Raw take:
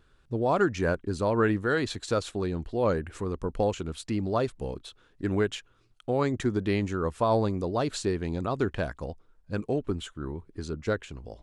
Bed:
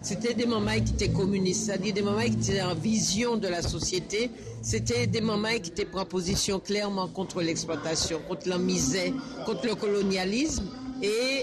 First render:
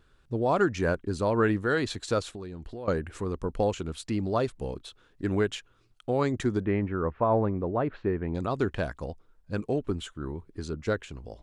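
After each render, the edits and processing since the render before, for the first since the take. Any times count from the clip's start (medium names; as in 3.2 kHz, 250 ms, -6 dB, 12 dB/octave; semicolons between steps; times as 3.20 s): 2.21–2.88 s: compression 5:1, threshold -36 dBFS; 6.65–8.35 s: low-pass 2.1 kHz 24 dB/octave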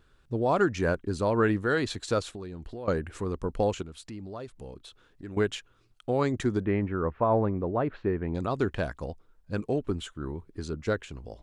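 3.82–5.37 s: compression 2:1, threshold -46 dBFS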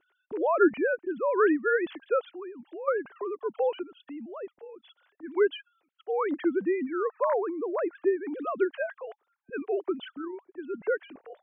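formants replaced by sine waves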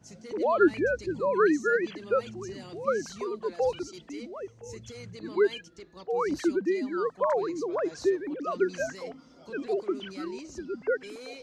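add bed -17 dB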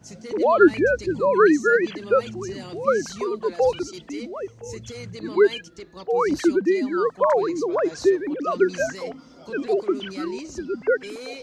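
trim +7 dB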